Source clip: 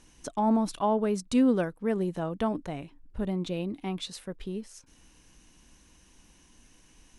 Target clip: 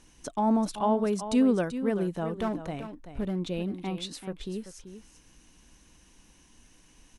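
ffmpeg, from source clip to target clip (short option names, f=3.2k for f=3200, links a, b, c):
-filter_complex "[0:a]asettb=1/sr,asplit=3[a][b][c];[a]atrim=end=2.374[d];[b]atrim=start=2.37:end=3.4,asetpts=PTS-STARTPTS,afade=t=in:d=0.004:c=qsin,afade=t=out:st=1.026:d=0.004:c=qsin,volume=24.5dB,asoftclip=hard,volume=-24.5dB[e];[c]atrim=start=3.396[f];[d][e]acrossfade=d=0.004:c1=hsin:c2=qsin[g];[g][f]acrossfade=d=0.004:c1=qsin:c2=hsin,asplit=2[h][i];[i]aecho=0:1:385:0.282[j];[h][j]amix=inputs=2:normalize=0"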